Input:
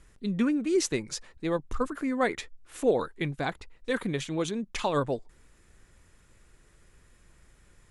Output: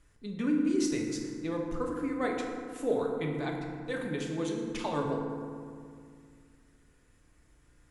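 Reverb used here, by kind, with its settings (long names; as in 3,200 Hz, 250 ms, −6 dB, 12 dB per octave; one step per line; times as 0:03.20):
feedback delay network reverb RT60 2.2 s, low-frequency decay 1.4×, high-frequency decay 0.45×, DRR −0.5 dB
level −8 dB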